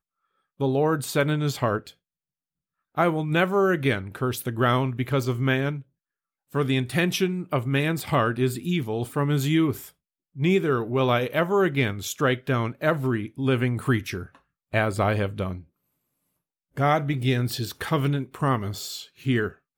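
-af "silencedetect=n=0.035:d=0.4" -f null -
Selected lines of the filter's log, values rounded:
silence_start: 0.00
silence_end: 0.60 | silence_duration: 0.60
silence_start: 1.87
silence_end: 2.98 | silence_duration: 1.11
silence_start: 5.78
silence_end: 6.55 | silence_duration: 0.76
silence_start: 9.77
silence_end: 10.39 | silence_duration: 0.63
silence_start: 14.23
silence_end: 14.74 | silence_duration: 0.51
silence_start: 15.55
silence_end: 16.77 | silence_duration: 1.22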